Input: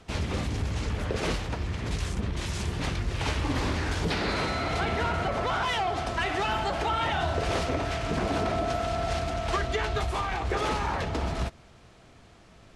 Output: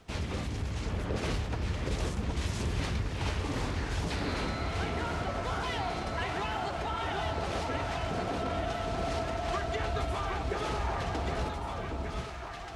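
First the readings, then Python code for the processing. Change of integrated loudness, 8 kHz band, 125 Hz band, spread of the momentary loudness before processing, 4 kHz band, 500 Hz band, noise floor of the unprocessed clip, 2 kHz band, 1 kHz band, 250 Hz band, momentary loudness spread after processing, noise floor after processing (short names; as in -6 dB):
-4.5 dB, -4.5 dB, -3.0 dB, 4 LU, -5.5 dB, -4.0 dB, -54 dBFS, -5.5 dB, -5.0 dB, -3.5 dB, 3 LU, -39 dBFS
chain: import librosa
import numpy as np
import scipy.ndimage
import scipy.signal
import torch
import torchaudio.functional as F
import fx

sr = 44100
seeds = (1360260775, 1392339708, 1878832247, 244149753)

y = fx.rider(x, sr, range_db=10, speed_s=0.5)
y = fx.dmg_crackle(y, sr, seeds[0], per_s=460.0, level_db=-57.0)
y = fx.echo_alternate(y, sr, ms=766, hz=1200.0, feedback_pct=71, wet_db=-2.0)
y = y * librosa.db_to_amplitude(-6.5)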